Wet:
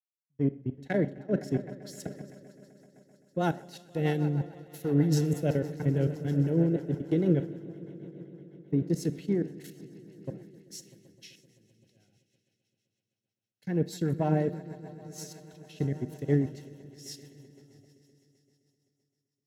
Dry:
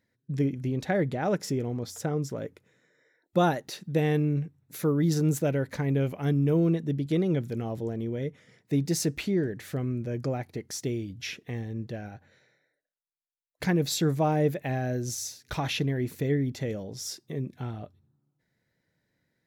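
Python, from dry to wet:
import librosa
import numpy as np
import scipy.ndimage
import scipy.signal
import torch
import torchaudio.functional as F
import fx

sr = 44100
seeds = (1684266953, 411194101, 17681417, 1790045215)

p1 = np.where(x < 0.0, 10.0 ** (-3.0 / 20.0) * x, x)
p2 = fx.low_shelf(p1, sr, hz=250.0, db=9.5)
p3 = fx.level_steps(p2, sr, step_db=23)
p4 = p3 + fx.echo_swell(p3, sr, ms=129, loudest=5, wet_db=-16.0, dry=0)
p5 = fx.rotary(p4, sr, hz=6.3)
p6 = fx.low_shelf(p5, sr, hz=71.0, db=-8.5)
p7 = fx.notch_comb(p6, sr, f0_hz=1200.0)
p8 = fx.rev_schroeder(p7, sr, rt60_s=0.65, comb_ms=28, drr_db=15.5)
y = fx.band_widen(p8, sr, depth_pct=100)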